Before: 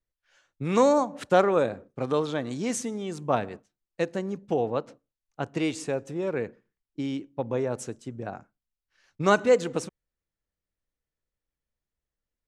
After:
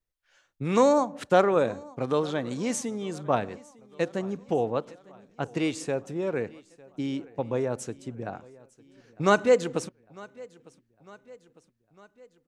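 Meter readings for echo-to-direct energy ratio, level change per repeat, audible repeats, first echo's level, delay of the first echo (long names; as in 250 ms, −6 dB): −21.5 dB, −5.0 dB, 3, −23.0 dB, 903 ms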